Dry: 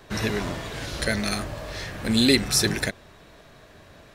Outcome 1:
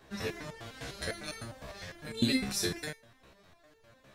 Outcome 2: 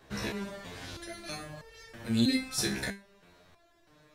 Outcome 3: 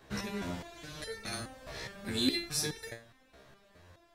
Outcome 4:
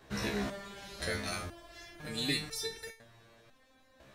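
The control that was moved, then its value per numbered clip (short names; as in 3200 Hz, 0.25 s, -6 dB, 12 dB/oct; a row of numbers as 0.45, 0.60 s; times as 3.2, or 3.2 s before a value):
stepped resonator, rate: 9.9, 3.1, 4.8, 2 Hz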